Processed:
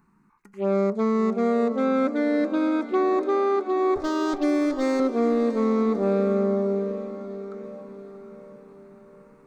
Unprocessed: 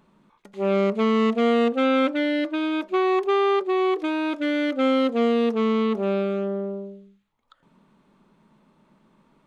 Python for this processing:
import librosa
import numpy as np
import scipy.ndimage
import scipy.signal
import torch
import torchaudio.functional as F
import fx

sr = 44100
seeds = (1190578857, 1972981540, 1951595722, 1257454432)

y = fx.lower_of_two(x, sr, delay_ms=7.1, at=(3.96, 5.0))
y = fx.rider(y, sr, range_db=10, speed_s=0.5)
y = fx.env_phaser(y, sr, low_hz=570.0, high_hz=3000.0, full_db=-20.0)
y = fx.echo_diffused(y, sr, ms=692, feedback_pct=50, wet_db=-11.5)